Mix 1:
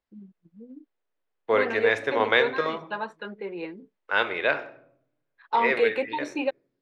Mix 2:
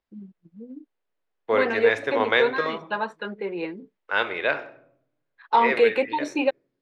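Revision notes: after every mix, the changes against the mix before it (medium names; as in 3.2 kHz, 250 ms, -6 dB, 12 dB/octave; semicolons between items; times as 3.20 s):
first voice +4.5 dB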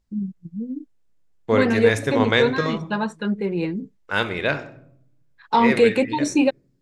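first voice: add low-pass 9.6 kHz 24 dB/octave; master: remove three-band isolator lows -20 dB, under 360 Hz, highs -21 dB, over 4 kHz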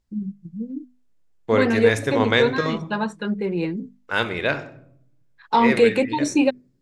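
master: add hum notches 50/100/150/200/250 Hz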